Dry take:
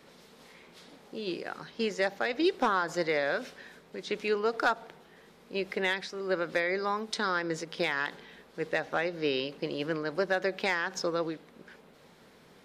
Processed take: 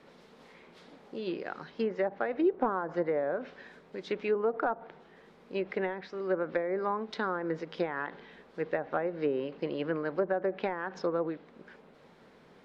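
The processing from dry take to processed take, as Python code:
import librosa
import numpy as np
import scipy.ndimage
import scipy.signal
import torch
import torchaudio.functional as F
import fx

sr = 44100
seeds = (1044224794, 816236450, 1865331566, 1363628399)

y = fx.env_lowpass_down(x, sr, base_hz=930.0, full_db=-24.5)
y = fx.lowpass(y, sr, hz=2000.0, slope=6)
y = fx.peak_eq(y, sr, hz=79.0, db=-3.5, octaves=2.1)
y = F.gain(torch.from_numpy(y), 1.0).numpy()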